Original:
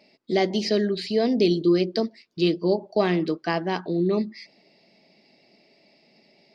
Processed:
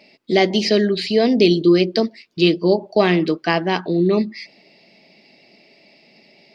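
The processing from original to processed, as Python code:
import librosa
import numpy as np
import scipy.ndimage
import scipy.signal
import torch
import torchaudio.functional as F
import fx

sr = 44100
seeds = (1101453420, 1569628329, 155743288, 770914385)

y = fx.peak_eq(x, sr, hz=2600.0, db=5.0, octaves=0.94)
y = y * librosa.db_to_amplitude(6.0)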